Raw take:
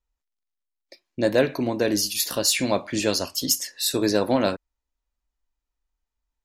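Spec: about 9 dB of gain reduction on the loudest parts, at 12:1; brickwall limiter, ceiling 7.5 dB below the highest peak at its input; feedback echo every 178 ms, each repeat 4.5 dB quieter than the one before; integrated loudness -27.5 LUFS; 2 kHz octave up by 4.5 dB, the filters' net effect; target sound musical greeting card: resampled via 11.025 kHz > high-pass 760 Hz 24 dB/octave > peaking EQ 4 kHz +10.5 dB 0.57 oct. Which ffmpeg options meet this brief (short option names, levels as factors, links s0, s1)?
-af "equalizer=f=2000:t=o:g=4.5,acompressor=threshold=0.0631:ratio=12,alimiter=limit=0.0891:level=0:latency=1,aecho=1:1:178|356|534|712|890|1068|1246|1424|1602:0.596|0.357|0.214|0.129|0.0772|0.0463|0.0278|0.0167|0.01,aresample=11025,aresample=44100,highpass=f=760:w=0.5412,highpass=f=760:w=1.3066,equalizer=f=4000:t=o:w=0.57:g=10.5,volume=1.06"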